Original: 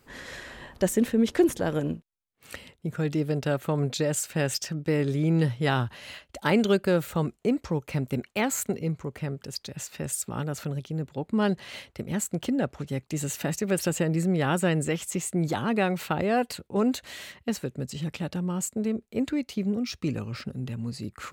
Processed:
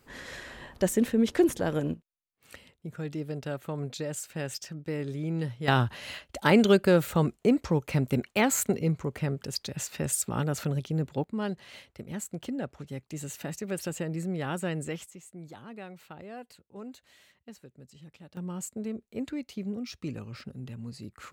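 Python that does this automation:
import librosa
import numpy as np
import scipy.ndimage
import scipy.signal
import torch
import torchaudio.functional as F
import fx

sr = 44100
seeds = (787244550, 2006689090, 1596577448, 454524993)

y = fx.gain(x, sr, db=fx.steps((0.0, -1.5), (1.94, -8.0), (5.68, 2.0), (11.24, -7.5), (15.06, -18.5), (18.37, -7.0)))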